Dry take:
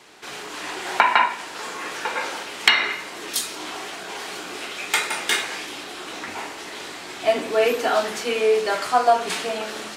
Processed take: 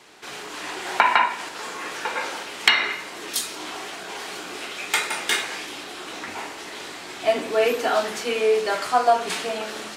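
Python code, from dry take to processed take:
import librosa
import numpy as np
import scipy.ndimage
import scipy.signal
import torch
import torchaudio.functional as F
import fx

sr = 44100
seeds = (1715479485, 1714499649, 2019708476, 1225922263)

y = fx.band_squash(x, sr, depth_pct=40, at=(1.05, 1.49))
y = y * 10.0 ** (-1.0 / 20.0)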